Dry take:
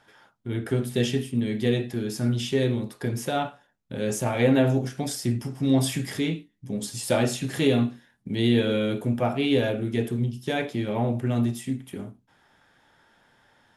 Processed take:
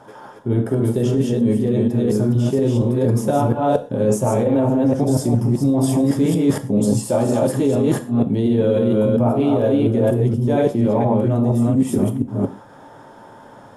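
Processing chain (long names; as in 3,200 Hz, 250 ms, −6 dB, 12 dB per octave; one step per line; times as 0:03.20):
delay that plays each chunk backwards 235 ms, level −1 dB
octave-band graphic EQ 125/250/500/1,000/2,000/4,000/8,000 Hz +8/+8/+10/+10/−7/−5/+3 dB
brickwall limiter −6 dBFS, peak gain reduction 9.5 dB
reversed playback
downward compressor 12 to 1, threshold −22 dBFS, peak gain reduction 13 dB
reversed playback
reverb whose tail is shaped and stops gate 150 ms falling, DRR 8.5 dB
level +8 dB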